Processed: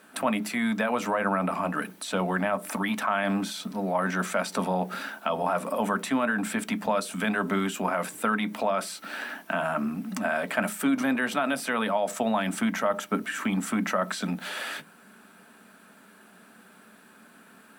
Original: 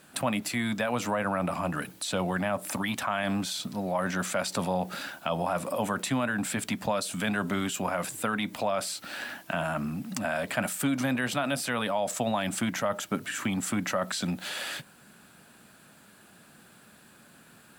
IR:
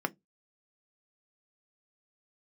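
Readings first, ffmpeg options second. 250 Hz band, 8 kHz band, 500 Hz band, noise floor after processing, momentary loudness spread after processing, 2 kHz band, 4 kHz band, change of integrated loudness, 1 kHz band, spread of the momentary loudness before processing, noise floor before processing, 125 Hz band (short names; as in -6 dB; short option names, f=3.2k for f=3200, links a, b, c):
+3.0 dB, -3.0 dB, +2.0 dB, -54 dBFS, 6 LU, +3.0 dB, -2.0 dB, +2.0 dB, +3.5 dB, 5 LU, -56 dBFS, -1.0 dB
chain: -filter_complex "[0:a]asplit=2[a][b];[1:a]atrim=start_sample=2205,asetrate=48510,aresample=44100[c];[b][c]afir=irnorm=-1:irlink=0,volume=1dB[d];[a][d]amix=inputs=2:normalize=0,volume=-7dB"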